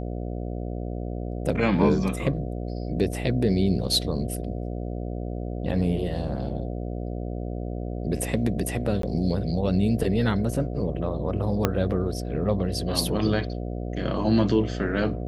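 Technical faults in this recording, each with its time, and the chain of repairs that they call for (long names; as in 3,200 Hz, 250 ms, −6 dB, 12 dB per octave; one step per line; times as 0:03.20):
mains buzz 60 Hz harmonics 12 −31 dBFS
0:09.02–0:09.03: drop-out 13 ms
0:11.65: click −7 dBFS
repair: click removal
hum removal 60 Hz, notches 12
repair the gap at 0:09.02, 13 ms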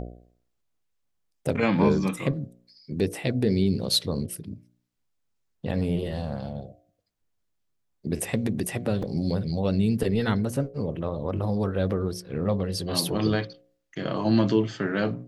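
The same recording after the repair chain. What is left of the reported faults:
0:11.65: click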